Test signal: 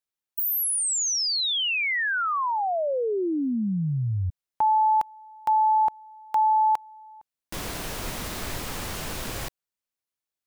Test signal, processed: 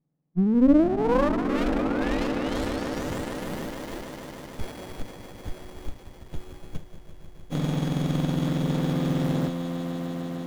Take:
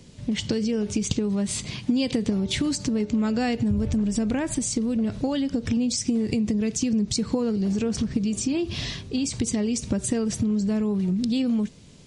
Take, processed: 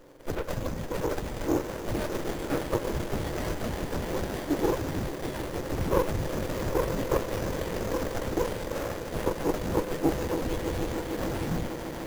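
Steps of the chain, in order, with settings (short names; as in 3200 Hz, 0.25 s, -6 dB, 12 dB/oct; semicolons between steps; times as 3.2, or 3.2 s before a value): spectrum mirrored in octaves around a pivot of 1700 Hz; ripple EQ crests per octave 1.1, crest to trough 10 dB; swelling echo 0.151 s, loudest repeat 5, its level -14 dB; running maximum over 33 samples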